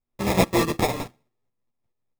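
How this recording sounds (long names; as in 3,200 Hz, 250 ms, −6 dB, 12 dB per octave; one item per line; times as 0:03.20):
a buzz of ramps at a fixed pitch in blocks of 32 samples
tremolo saw up 4.7 Hz, depth 60%
aliases and images of a low sample rate 1,500 Hz, jitter 0%
a shimmering, thickened sound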